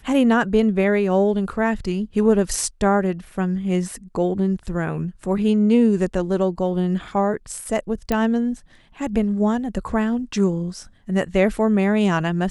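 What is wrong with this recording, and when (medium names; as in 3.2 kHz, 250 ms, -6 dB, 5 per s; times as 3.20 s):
8.12 s: pop -9 dBFS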